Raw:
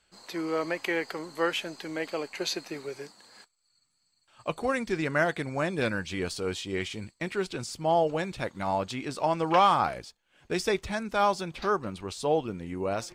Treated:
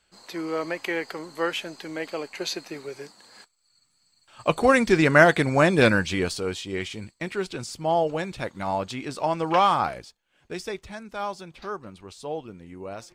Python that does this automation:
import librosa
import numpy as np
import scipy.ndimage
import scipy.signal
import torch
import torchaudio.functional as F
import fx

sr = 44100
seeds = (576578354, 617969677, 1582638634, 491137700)

y = fx.gain(x, sr, db=fx.line((2.9, 1.0), (4.75, 10.5), (5.91, 10.5), (6.55, 1.5), (9.85, 1.5), (10.78, -6.5)))